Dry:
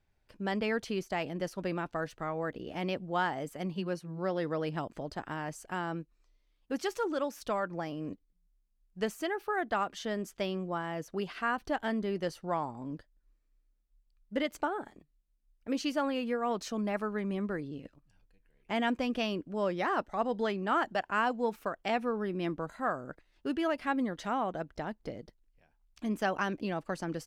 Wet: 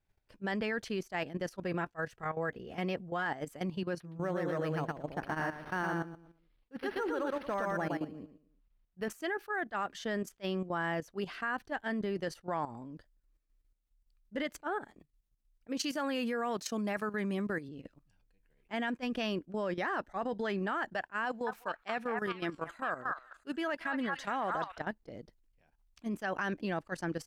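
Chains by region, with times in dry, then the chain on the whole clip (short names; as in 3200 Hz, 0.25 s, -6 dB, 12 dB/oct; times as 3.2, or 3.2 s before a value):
1.6–3.26 bell 3900 Hz -3.5 dB 0.65 oct + notch comb 300 Hz
4–9.1 feedback echo 0.115 s, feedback 29%, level -3 dB + decimation joined by straight lines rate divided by 6×
15.79–17.69 HPF 50 Hz 24 dB/oct + high shelf 4700 Hz +9.5 dB
21.25–24.81 low shelf 340 Hz -6.5 dB + delay with a stepping band-pass 0.216 s, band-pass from 1200 Hz, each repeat 1.4 oct, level -2 dB
whole clip: dynamic EQ 1700 Hz, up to +7 dB, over -52 dBFS, Q 3.7; level quantiser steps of 12 dB; attack slew limiter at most 570 dB/s; gain +2.5 dB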